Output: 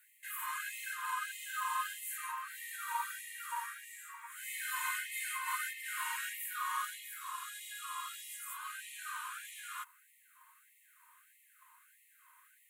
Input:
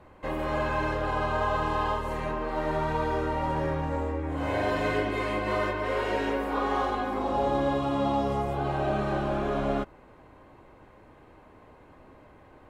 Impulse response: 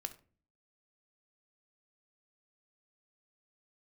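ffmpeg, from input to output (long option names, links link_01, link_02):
-af "aexciter=amount=11.6:drive=7.1:freq=7600,afftfilt=real='re*gte(b*sr/1024,870*pow(1800/870,0.5+0.5*sin(2*PI*1.6*pts/sr)))':imag='im*gte(b*sr/1024,870*pow(1800/870,0.5+0.5*sin(2*PI*1.6*pts/sr)))':win_size=1024:overlap=0.75,volume=-4dB"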